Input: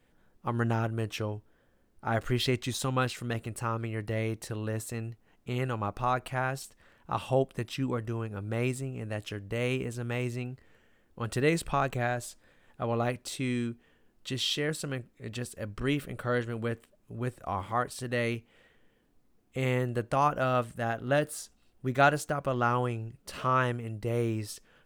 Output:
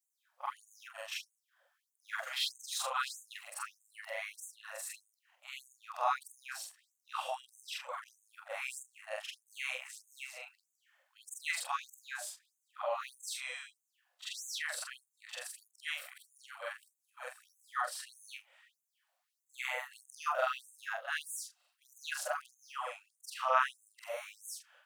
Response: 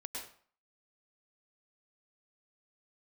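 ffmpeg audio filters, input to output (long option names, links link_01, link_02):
-af "afftfilt=real='re':imag='-im':win_size=4096:overlap=0.75,afftfilt=real='re*gte(b*sr/1024,500*pow(6300/500,0.5+0.5*sin(2*PI*1.6*pts/sr)))':imag='im*gte(b*sr/1024,500*pow(6300/500,0.5+0.5*sin(2*PI*1.6*pts/sr)))':win_size=1024:overlap=0.75,volume=3.5dB"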